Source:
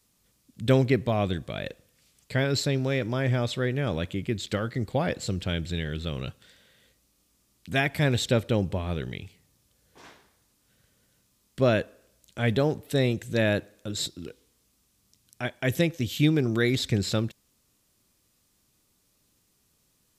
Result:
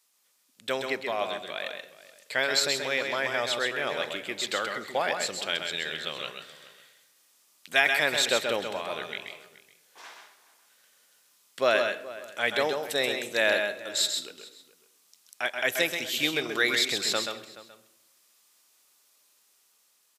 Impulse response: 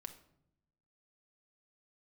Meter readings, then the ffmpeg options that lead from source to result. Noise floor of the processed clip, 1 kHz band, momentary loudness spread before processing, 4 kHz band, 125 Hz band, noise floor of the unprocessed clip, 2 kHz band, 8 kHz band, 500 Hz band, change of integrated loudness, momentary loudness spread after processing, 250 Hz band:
-66 dBFS, +3.5 dB, 12 LU, +6.0 dB, -23.5 dB, -69 dBFS, +6.0 dB, +6.0 dB, -1.5 dB, -0.5 dB, 14 LU, -12.0 dB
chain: -filter_complex "[0:a]highpass=750,dynaudnorm=f=650:g=5:m=5dB,asplit=2[a][b];[b]adelay=425.7,volume=-17dB,highshelf=f=4k:g=-9.58[c];[a][c]amix=inputs=2:normalize=0,asplit=2[d][e];[1:a]atrim=start_sample=2205,adelay=130[f];[e][f]afir=irnorm=-1:irlink=0,volume=0dB[g];[d][g]amix=inputs=2:normalize=0"

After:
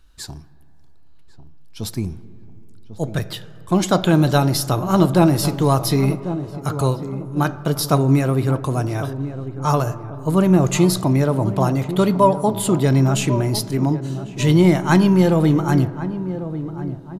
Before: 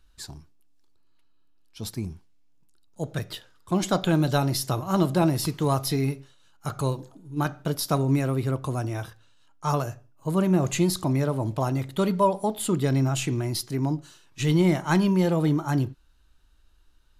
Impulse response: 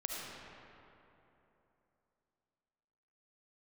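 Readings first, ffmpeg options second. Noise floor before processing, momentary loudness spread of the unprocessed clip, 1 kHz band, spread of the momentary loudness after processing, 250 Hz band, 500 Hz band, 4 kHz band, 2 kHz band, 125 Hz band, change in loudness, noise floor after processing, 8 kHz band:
-58 dBFS, 14 LU, +7.0 dB, 13 LU, +7.5 dB, +7.5 dB, +6.0 dB, +6.5 dB, +7.5 dB, +7.0 dB, -40 dBFS, +6.0 dB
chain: -filter_complex "[0:a]asplit=2[a][b];[b]adelay=1096,lowpass=f=850:p=1,volume=-11dB,asplit=2[c][d];[d]adelay=1096,lowpass=f=850:p=1,volume=0.46,asplit=2[e][f];[f]adelay=1096,lowpass=f=850:p=1,volume=0.46,asplit=2[g][h];[h]adelay=1096,lowpass=f=850:p=1,volume=0.46,asplit=2[i][j];[j]adelay=1096,lowpass=f=850:p=1,volume=0.46[k];[a][c][e][g][i][k]amix=inputs=6:normalize=0,asplit=2[l][m];[1:a]atrim=start_sample=2205,lowpass=2.1k[n];[m][n]afir=irnorm=-1:irlink=0,volume=-15.5dB[o];[l][o]amix=inputs=2:normalize=0,volume=6dB"

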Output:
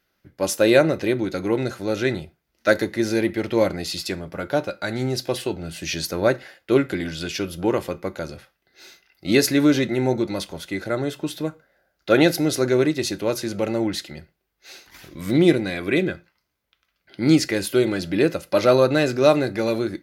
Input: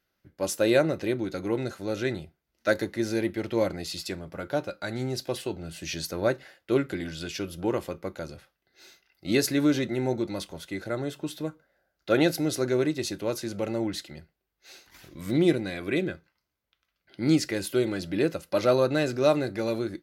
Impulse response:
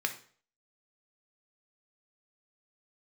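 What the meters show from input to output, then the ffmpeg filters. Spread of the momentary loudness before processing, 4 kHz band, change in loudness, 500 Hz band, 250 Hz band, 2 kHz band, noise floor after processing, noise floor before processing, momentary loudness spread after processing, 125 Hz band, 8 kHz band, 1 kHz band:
13 LU, +6.5 dB, +6.0 dB, +6.0 dB, +6.0 dB, +7.0 dB, -74 dBFS, -81 dBFS, 13 LU, +5.5 dB, +6.0 dB, +6.5 dB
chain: -filter_complex "[0:a]asplit=2[a][b];[1:a]atrim=start_sample=2205,afade=t=out:st=0.17:d=0.01,atrim=end_sample=7938[c];[b][c]afir=irnorm=-1:irlink=0,volume=-16dB[d];[a][d]amix=inputs=2:normalize=0,volume=5dB"

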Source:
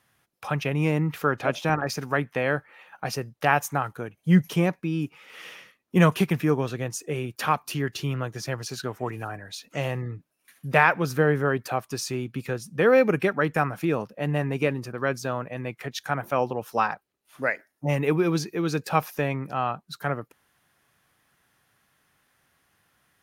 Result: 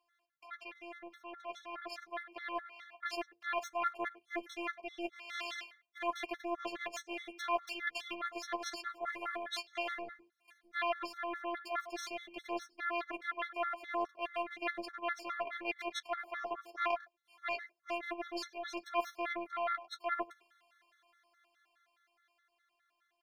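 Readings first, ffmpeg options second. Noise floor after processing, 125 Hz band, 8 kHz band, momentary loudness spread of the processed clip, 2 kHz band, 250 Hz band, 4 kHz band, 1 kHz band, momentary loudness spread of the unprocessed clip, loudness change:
-81 dBFS, under -40 dB, -14.5 dB, 9 LU, -11.5 dB, -20.0 dB, -7.5 dB, -10.0 dB, 12 LU, -13.5 dB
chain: -filter_complex "[0:a]asplit=2[a][b];[b]asoftclip=type=tanh:threshold=-21dB,volume=-10dB[c];[a][c]amix=inputs=2:normalize=0,afftfilt=real='hypot(re,im)*cos(PI*b)':imag='0':win_size=512:overlap=0.75,areverse,acompressor=threshold=-36dB:ratio=16,areverse,bandreject=f=50:t=h:w=6,bandreject=f=100:t=h:w=6,bandreject=f=150:t=h:w=6,bandreject=f=200:t=h:w=6,asplit=2[d][e];[e]adelay=100,highpass=300,lowpass=3.4k,asoftclip=type=hard:threshold=-30dB,volume=-12dB[f];[d][f]amix=inputs=2:normalize=0,aeval=exprs='0.0891*(cos(1*acos(clip(val(0)/0.0891,-1,1)))-cos(1*PI/2))+0.0282*(cos(2*acos(clip(val(0)/0.0891,-1,1)))-cos(2*PI/2))+0.00316*(cos(3*acos(clip(val(0)/0.0891,-1,1)))-cos(3*PI/2))+0.0158*(cos(6*acos(clip(val(0)/0.0891,-1,1)))-cos(6*PI/2))+0.000794*(cos(8*acos(clip(val(0)/0.0891,-1,1)))-cos(8*PI/2))':c=same,dynaudnorm=f=270:g=17:m=10.5dB,acrossover=split=440 5200:gain=0.0708 1 0.141[g][h][i];[g][h][i]amix=inputs=3:normalize=0,flanger=delay=8.5:depth=3.1:regen=-24:speed=0.47:shape=sinusoidal,afftfilt=real='re*gt(sin(2*PI*4.8*pts/sr)*(1-2*mod(floor(b*sr/1024/1100),2)),0)':imag='im*gt(sin(2*PI*4.8*pts/sr)*(1-2*mod(floor(b*sr/1024/1100),2)),0)':win_size=1024:overlap=0.75,volume=-2dB"

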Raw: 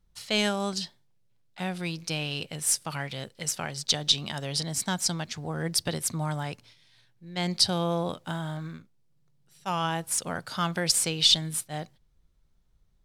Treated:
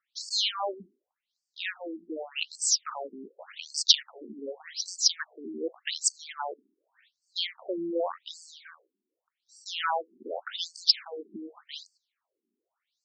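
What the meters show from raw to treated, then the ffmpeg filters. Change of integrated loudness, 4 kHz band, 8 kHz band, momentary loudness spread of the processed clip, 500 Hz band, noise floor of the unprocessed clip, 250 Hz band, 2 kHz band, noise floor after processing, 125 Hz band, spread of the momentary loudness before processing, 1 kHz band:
-1.5 dB, -1.0 dB, -2.5 dB, 19 LU, -2.0 dB, -65 dBFS, -8.0 dB, -3.5 dB, under -85 dBFS, under -30 dB, 13 LU, -3.0 dB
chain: -filter_complex "[0:a]lowshelf=f=240:g=-8.5,acrossover=split=410|940[a][b][c];[b]acrusher=samples=14:mix=1:aa=0.000001:lfo=1:lforange=8.4:lforate=3.1[d];[a][d][c]amix=inputs=3:normalize=0,afftfilt=real='re*between(b*sr/1024,280*pow(6300/280,0.5+0.5*sin(2*PI*0.86*pts/sr))/1.41,280*pow(6300/280,0.5+0.5*sin(2*PI*0.86*pts/sr))*1.41)':imag='im*between(b*sr/1024,280*pow(6300/280,0.5+0.5*sin(2*PI*0.86*pts/sr))/1.41,280*pow(6300/280,0.5+0.5*sin(2*PI*0.86*pts/sr))*1.41)':win_size=1024:overlap=0.75,volume=7dB"

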